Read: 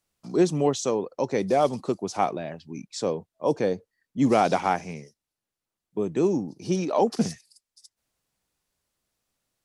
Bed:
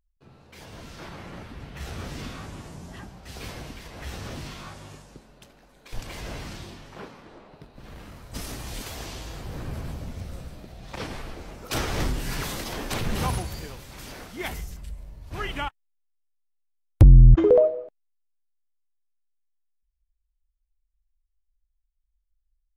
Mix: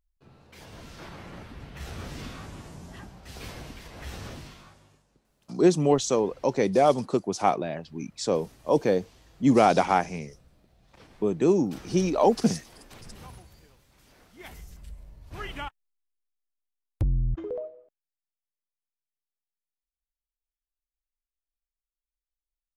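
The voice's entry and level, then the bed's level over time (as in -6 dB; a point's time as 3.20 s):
5.25 s, +1.5 dB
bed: 4.25 s -2.5 dB
5.03 s -19 dB
14.04 s -19 dB
14.88 s -5.5 dB
15.84 s -5.5 dB
17.96 s -20 dB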